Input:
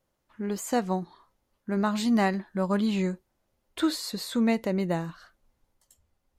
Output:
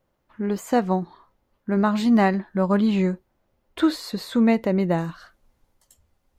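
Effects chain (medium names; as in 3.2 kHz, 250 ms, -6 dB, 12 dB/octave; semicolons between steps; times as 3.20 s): peaking EQ 8.9 kHz -10.5 dB 2.2 oct, from 4.98 s -2 dB; trim +6 dB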